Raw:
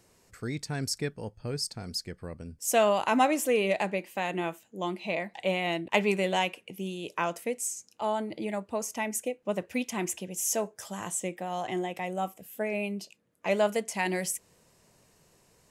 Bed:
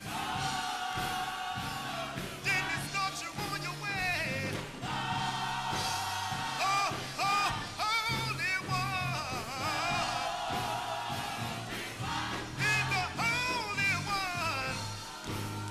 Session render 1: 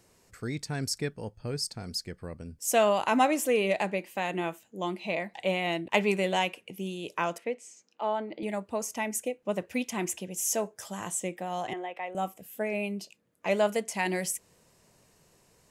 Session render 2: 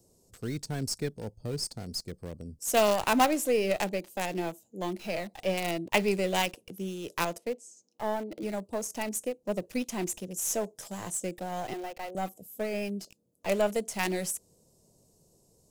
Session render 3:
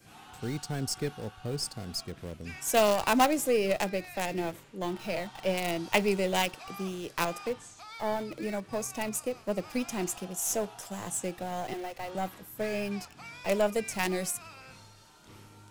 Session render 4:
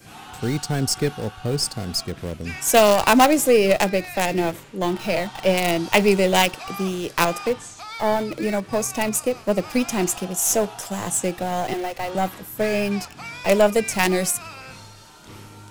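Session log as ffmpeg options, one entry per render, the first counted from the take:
-filter_complex "[0:a]asettb=1/sr,asplit=3[s0][s1][s2];[s0]atrim=end=7.384[s3];[s1]atrim=start=7.38:end=8.43,asetpts=PTS-STARTPTS,afade=t=in:d=0.004:c=qsin,afade=t=out:st=1.046:d=0.004:c=qsin,highpass=250,lowpass=3200[s4];[s2]atrim=start=8.426[s5];[s3][s4]acrossfade=d=0.004:c1=hsin:c2=qsin[s6];[s6][s5]acrossfade=d=0.004:c1=qsin:c2=hsin,asettb=1/sr,asplit=3[s7][s8][s9];[s7]atrim=end=11.734[s10];[s8]atrim=start=11.73:end=12.15,asetpts=PTS-STARTPTS,afade=t=in:d=0.004:c=qsin,afade=t=out:st=0.416:d=0.004:c=qsin,acrossover=split=400 3200:gain=0.0794 1 0.0794[s11][s12][s13];[s11][s12][s13]amix=inputs=3:normalize=0[s14];[s9]atrim=start=12.146[s15];[s10][s14]acrossfade=d=0.004:c1=hsin:c2=qsin[s16];[s16][s15]acrossfade=d=0.004:c1=qsin:c2=hsin"
-filter_complex "[0:a]acrossover=split=410|740|4500[s0][s1][s2][s3];[s2]acrusher=bits=5:dc=4:mix=0:aa=0.000001[s4];[s3]volume=21.1,asoftclip=hard,volume=0.0473[s5];[s0][s1][s4][s5]amix=inputs=4:normalize=0"
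-filter_complex "[1:a]volume=0.168[s0];[0:a][s0]amix=inputs=2:normalize=0"
-af "volume=3.35,alimiter=limit=0.708:level=0:latency=1"

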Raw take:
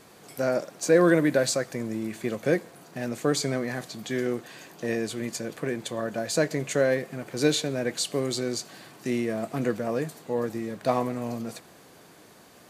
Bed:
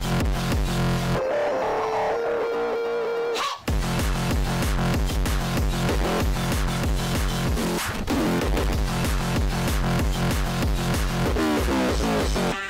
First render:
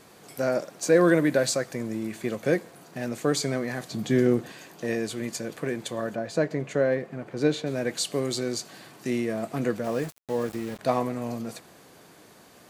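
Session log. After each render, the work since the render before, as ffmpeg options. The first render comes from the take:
-filter_complex "[0:a]asettb=1/sr,asplit=3[s0][s1][s2];[s0]atrim=end=3.914[s3];[s1]atrim=start=3.91:end=4.52,asetpts=PTS-STARTPTS,afade=t=in:d=0.004:c=qsin,afade=t=out:st=0.606:d=0.004:c=qsin,lowshelf=f=410:g=11.5[s4];[s2]atrim=start=4.516[s5];[s3][s4]acrossfade=d=0.004:c1=hsin:c2=qsin[s6];[s6][s5]acrossfade=d=0.004:c1=qsin:c2=hsin,asplit=3[s7][s8][s9];[s7]afade=t=out:st=6.14:d=0.02[s10];[s8]lowpass=f=1600:p=1,afade=t=in:st=6.14:d=0.02,afade=t=out:st=7.66:d=0.02[s11];[s9]afade=t=in:st=7.66:d=0.02[s12];[s10][s11][s12]amix=inputs=3:normalize=0,asettb=1/sr,asplit=3[s13][s14][s15];[s13]atrim=end=9.844[s16];[s14]atrim=start=9.84:end=10.79,asetpts=PTS-STARTPTS,afade=t=in:d=0.004:c=qsin,afade=t=out:st=0.946:d=0.004:c=qsin,aeval=exprs='val(0)*gte(abs(val(0)),0.0126)':c=same[s17];[s15]atrim=start=10.786[s18];[s16][s17]acrossfade=d=0.004:c1=hsin:c2=qsin[s19];[s19][s18]acrossfade=d=0.004:c1=qsin:c2=hsin"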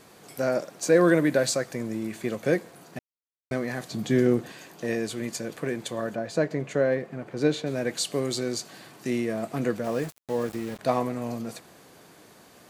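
-filter_complex "[0:a]asplit=3[s0][s1][s2];[s0]atrim=end=2.99,asetpts=PTS-STARTPTS,afade=t=out:st=2.986:d=0.004:c=hsin[s3];[s1]atrim=start=2.99:end=3.51,asetpts=PTS-STARTPTS,volume=0[s4];[s2]atrim=start=3.51,asetpts=PTS-STARTPTS,afade=t=in:d=0.004:c=hsin[s5];[s3][s4][s5]concat=n=3:v=0:a=1"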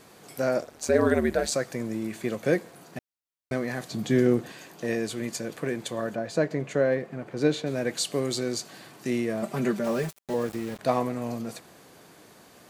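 -filter_complex "[0:a]asettb=1/sr,asplit=3[s0][s1][s2];[s0]atrim=end=0.614[s3];[s1]atrim=start=0.61:end=1.52,asetpts=PTS-STARTPTS,afade=t=in:d=0.004:c=qsin,afade=t=out:st=0.906:d=0.004:c=qsin,aeval=exprs='val(0)*sin(2*PI*74*n/s)':c=same[s4];[s2]atrim=start=1.516[s5];[s3][s4]acrossfade=d=0.004:c1=hsin:c2=qsin[s6];[s6][s5]acrossfade=d=0.004:c1=qsin:c2=hsin,asettb=1/sr,asplit=3[s7][s8][s9];[s7]atrim=end=9.424[s10];[s8]atrim=start=9.42:end=10.34,asetpts=PTS-STARTPTS,afade=t=in:d=0.004:c=qsin,afade=t=out:st=0.916:d=0.004:c=qsin,aecho=1:1:5.1:0.85,atrim=end_sample=40572[s11];[s9]atrim=start=10.336[s12];[s10][s11]acrossfade=d=0.004:c1=hsin:c2=qsin[s13];[s13][s12]acrossfade=d=0.004:c1=qsin:c2=hsin"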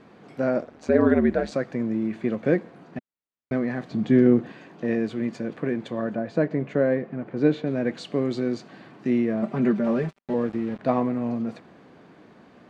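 -af "lowpass=2500,equalizer=f=230:t=o:w=1.1:g=7"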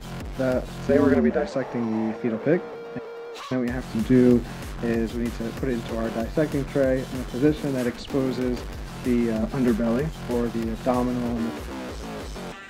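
-filter_complex "[1:a]volume=0.266[s0];[0:a][s0]amix=inputs=2:normalize=0"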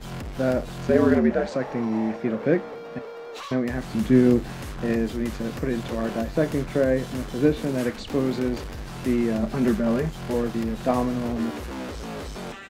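-filter_complex "[0:a]asplit=2[s0][s1];[s1]adelay=31,volume=0.2[s2];[s0][s2]amix=inputs=2:normalize=0"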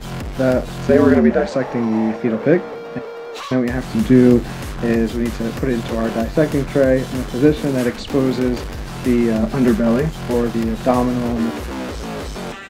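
-af "volume=2.24,alimiter=limit=0.891:level=0:latency=1"

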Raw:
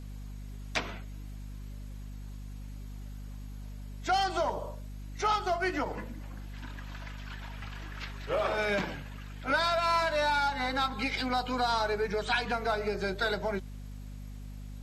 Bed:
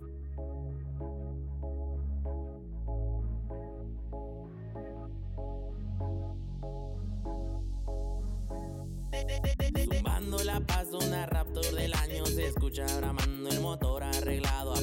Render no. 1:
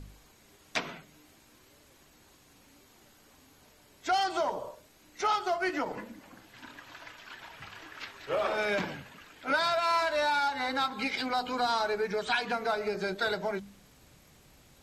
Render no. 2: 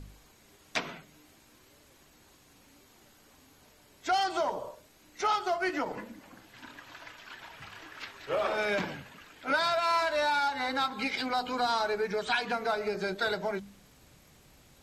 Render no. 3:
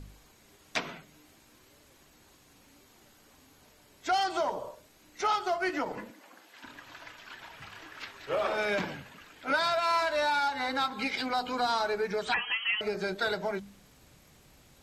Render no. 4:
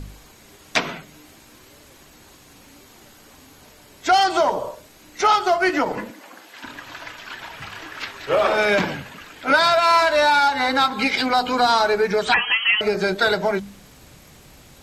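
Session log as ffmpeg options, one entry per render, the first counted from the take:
-af "bandreject=f=50:t=h:w=4,bandreject=f=100:t=h:w=4,bandreject=f=150:t=h:w=4,bandreject=f=200:t=h:w=4,bandreject=f=250:t=h:w=4"
-filter_complex "[0:a]asplit=3[s0][s1][s2];[s0]afade=t=out:st=7.47:d=0.02[s3];[s1]asoftclip=type=hard:threshold=0.0106,afade=t=in:st=7.47:d=0.02,afade=t=out:st=8.01:d=0.02[s4];[s2]afade=t=in:st=8.01:d=0.02[s5];[s3][s4][s5]amix=inputs=3:normalize=0"
-filter_complex "[0:a]asettb=1/sr,asplit=3[s0][s1][s2];[s0]atrim=end=6.104[s3];[s1]atrim=start=6.1:end=6.64,asetpts=PTS-STARTPTS,afade=t=in:d=0.004:c=qsin,afade=t=out:st=0.536:d=0.004:c=qsin,highpass=390[s4];[s2]atrim=start=6.636[s5];[s3][s4]acrossfade=d=0.004:c1=hsin:c2=qsin[s6];[s6][s5]acrossfade=d=0.004:c1=qsin:c2=hsin,asettb=1/sr,asplit=3[s7][s8][s9];[s7]atrim=end=12.344[s10];[s8]atrim=start=12.34:end=12.81,asetpts=PTS-STARTPTS,afade=t=in:d=0.004:c=qsin,afade=t=out:st=0.466:d=0.004:c=qsin,lowpass=f=2900:t=q:w=0.5098,lowpass=f=2900:t=q:w=0.6013,lowpass=f=2900:t=q:w=0.9,lowpass=f=2900:t=q:w=2.563,afreqshift=-3400[s11];[s9]atrim=start=12.806[s12];[s10][s11]acrossfade=d=0.004:c1=hsin:c2=qsin[s13];[s13][s12]acrossfade=d=0.004:c1=qsin:c2=hsin"
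-af "volume=3.76"

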